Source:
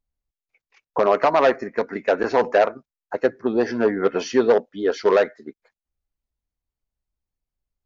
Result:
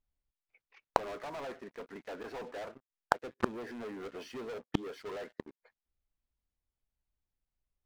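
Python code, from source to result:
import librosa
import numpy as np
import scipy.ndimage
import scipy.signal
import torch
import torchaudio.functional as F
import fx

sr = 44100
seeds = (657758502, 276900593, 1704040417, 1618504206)

y = fx.rattle_buzz(x, sr, strikes_db=-27.0, level_db=-28.0)
y = scipy.signal.sosfilt(scipy.signal.butter(2, 3900.0, 'lowpass', fs=sr, output='sos'), y)
y = fx.leveller(y, sr, passes=5)
y = fx.gate_flip(y, sr, shuts_db=-15.0, range_db=-39)
y = y * 10.0 ** (6.5 / 20.0)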